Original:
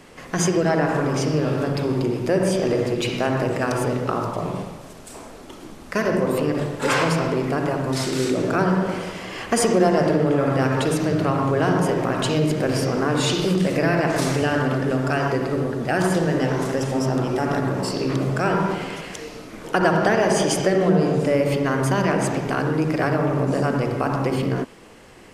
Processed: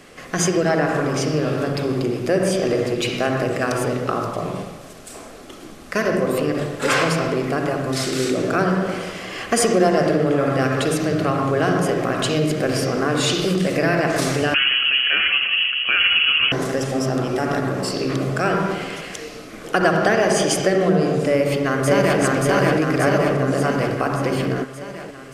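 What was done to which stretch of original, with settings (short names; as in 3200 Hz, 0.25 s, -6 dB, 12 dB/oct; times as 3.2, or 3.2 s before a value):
14.54–16.52 inverted band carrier 3100 Hz
21.29–22.2 echo throw 0.58 s, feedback 65%, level -0.5 dB
whole clip: low shelf 340 Hz -4.5 dB; notch 920 Hz, Q 5.6; gain +3 dB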